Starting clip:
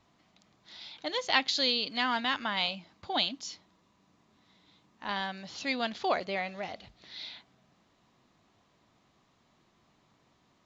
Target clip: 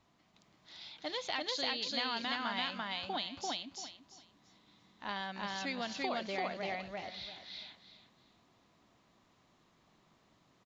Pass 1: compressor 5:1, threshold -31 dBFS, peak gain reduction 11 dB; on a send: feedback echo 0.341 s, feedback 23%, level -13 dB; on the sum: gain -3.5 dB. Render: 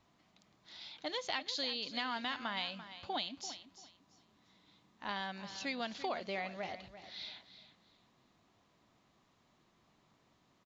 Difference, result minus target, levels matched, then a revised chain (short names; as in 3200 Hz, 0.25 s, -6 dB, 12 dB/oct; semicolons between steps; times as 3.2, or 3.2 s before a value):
echo-to-direct -12 dB
compressor 5:1, threshold -31 dBFS, peak gain reduction 11 dB; on a send: feedback echo 0.341 s, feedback 23%, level -1 dB; on the sum: gain -3.5 dB